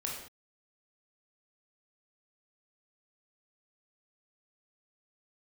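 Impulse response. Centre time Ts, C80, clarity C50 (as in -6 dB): 46 ms, 5.5 dB, 2.5 dB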